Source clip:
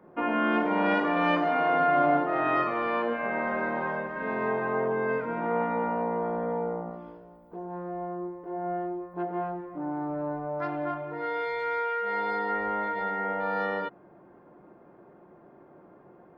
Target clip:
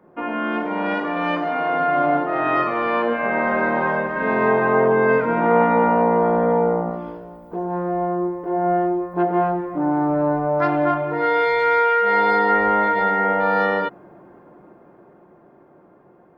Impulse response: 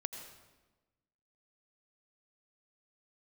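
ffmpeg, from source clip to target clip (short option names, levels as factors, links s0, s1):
-af "dynaudnorm=f=340:g=17:m=3.55,volume=1.19"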